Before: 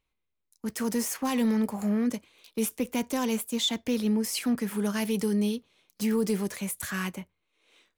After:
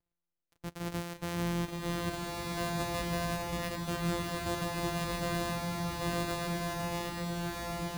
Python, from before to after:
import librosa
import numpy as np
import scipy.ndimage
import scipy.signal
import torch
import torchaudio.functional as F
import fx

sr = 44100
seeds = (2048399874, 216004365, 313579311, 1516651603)

y = np.r_[np.sort(x[:len(x) // 256 * 256].reshape(-1, 256), axis=1).ravel(), x[len(x) // 256 * 256:]]
y = fx.rev_bloom(y, sr, seeds[0], attack_ms=1520, drr_db=-2.5)
y = F.gain(torch.from_numpy(y), -8.5).numpy()